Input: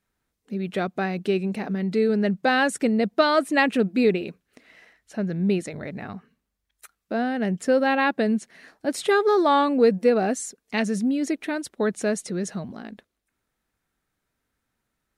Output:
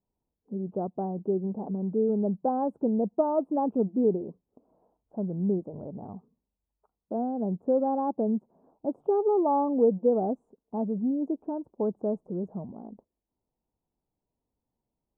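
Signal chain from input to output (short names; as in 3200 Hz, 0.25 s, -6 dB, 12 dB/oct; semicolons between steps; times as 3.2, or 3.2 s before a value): elliptic low-pass 950 Hz, stop band 50 dB; gain -4 dB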